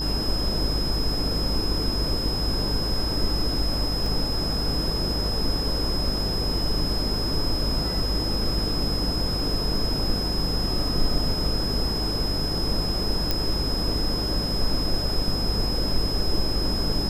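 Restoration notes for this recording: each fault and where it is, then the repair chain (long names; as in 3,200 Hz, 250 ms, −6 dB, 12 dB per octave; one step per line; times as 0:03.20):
mains buzz 50 Hz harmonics 33 −30 dBFS
whistle 5,100 Hz −28 dBFS
0:04.06: drop-out 2.2 ms
0:13.31: click −9 dBFS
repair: click removal
hum removal 50 Hz, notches 33
notch filter 5,100 Hz, Q 30
repair the gap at 0:04.06, 2.2 ms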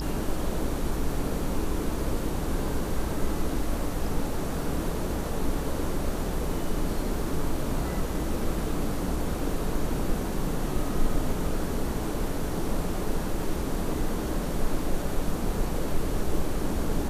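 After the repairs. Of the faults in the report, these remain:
none of them is left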